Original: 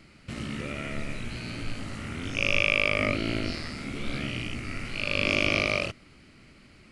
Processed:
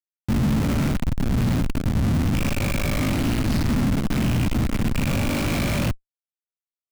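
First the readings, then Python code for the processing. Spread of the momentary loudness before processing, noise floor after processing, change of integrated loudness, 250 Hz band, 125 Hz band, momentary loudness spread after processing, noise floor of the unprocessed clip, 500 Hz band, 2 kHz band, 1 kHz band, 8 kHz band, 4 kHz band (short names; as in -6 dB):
13 LU, under -85 dBFS, +5.0 dB, +12.0 dB, +14.0 dB, 3 LU, -55 dBFS, +1.5 dB, -4.5 dB, +5.5 dB, +10.0 dB, -1.5 dB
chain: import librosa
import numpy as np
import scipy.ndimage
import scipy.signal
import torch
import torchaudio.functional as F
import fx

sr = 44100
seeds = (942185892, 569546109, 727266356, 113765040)

y = fx.schmitt(x, sr, flips_db=-35.0)
y = fx.low_shelf_res(y, sr, hz=310.0, db=6.5, q=1.5)
y = F.gain(torch.from_numpy(y), 4.0).numpy()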